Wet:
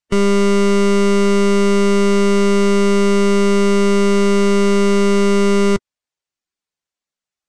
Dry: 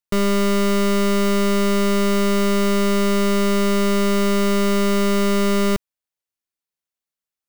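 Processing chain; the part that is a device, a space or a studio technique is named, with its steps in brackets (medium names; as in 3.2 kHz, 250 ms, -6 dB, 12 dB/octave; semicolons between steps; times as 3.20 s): clip after many re-uploads (low-pass 8.5 kHz 24 dB/octave; coarse spectral quantiser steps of 15 dB); trim +4.5 dB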